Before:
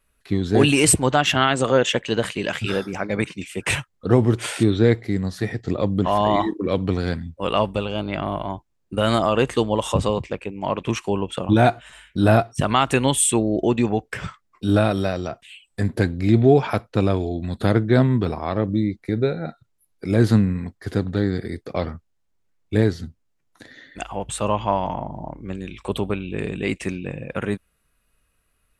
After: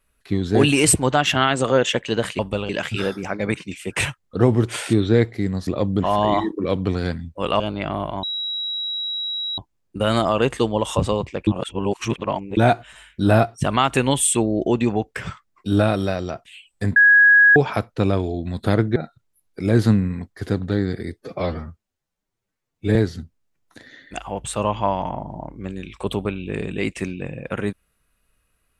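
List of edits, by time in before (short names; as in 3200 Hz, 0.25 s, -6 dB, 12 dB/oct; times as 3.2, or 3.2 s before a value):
5.37–5.69 cut
7.62–7.92 move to 2.39
8.55 add tone 3870 Hz -23.5 dBFS 1.35 s
10.44–11.54 reverse
15.93–16.53 bleep 1660 Hz -8.5 dBFS
17.93–19.41 cut
21.59–22.8 stretch 1.5×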